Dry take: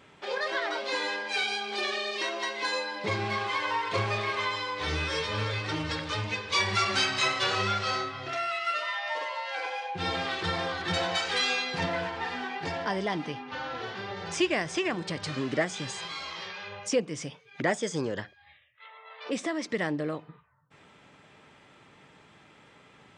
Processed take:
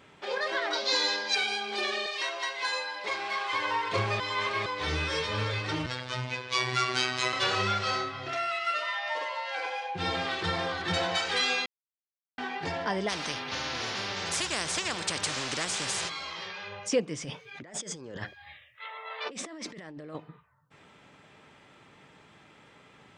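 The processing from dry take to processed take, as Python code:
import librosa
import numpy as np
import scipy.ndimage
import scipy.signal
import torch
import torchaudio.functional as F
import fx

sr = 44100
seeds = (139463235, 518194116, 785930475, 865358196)

y = fx.band_shelf(x, sr, hz=5000.0, db=10.5, octaves=1.1, at=(0.73, 1.35))
y = fx.highpass(y, sr, hz=640.0, slope=12, at=(2.06, 3.53))
y = fx.robotise(y, sr, hz=126.0, at=(5.86, 7.33))
y = fx.spectral_comp(y, sr, ratio=4.0, at=(13.08, 16.08), fade=0.02)
y = fx.over_compress(y, sr, threshold_db=-41.0, ratio=-1.0, at=(17.24, 20.15))
y = fx.edit(y, sr, fx.reverse_span(start_s=4.2, length_s=0.46),
    fx.silence(start_s=11.66, length_s=0.72), tone=tone)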